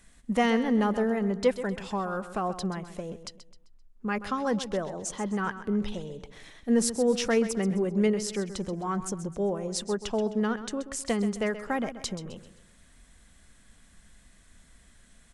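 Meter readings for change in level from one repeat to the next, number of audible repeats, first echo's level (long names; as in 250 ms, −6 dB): −8.0 dB, 3, −12.5 dB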